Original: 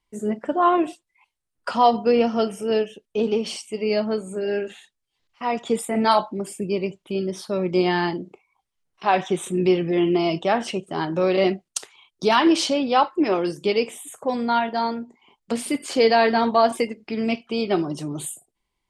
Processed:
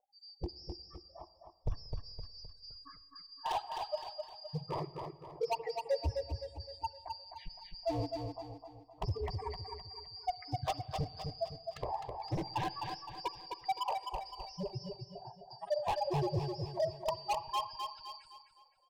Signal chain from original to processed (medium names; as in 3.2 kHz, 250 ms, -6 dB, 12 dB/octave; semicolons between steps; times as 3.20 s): four frequency bands reordered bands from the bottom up 2341; gate -48 dBFS, range -7 dB; spectral gate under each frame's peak -15 dB strong; tilt EQ -3 dB/octave; in parallel at 0 dB: peak limiter -20 dBFS, peak gain reduction 9.5 dB; on the sum: compression 6:1, threshold -26 dBFS, peak gain reduction 12 dB; resonant low-pass 950 Hz, resonance Q 4.9; hard clipper -32.5 dBFS, distortion -7 dB; static phaser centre 590 Hz, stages 4; on a send: feedback delay 258 ms, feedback 44%, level -5 dB; on the sum: spring tank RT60 2.1 s, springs 45/52/60 ms, chirp 75 ms, DRR 17.5 dB; tape noise reduction on one side only decoder only; trim +6 dB